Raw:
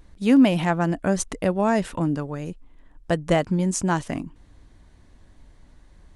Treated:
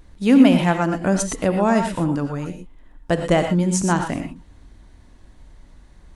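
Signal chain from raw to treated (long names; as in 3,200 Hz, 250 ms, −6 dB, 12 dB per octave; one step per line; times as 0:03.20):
reverb whose tail is shaped and stops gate 140 ms rising, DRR 5.5 dB
level +2.5 dB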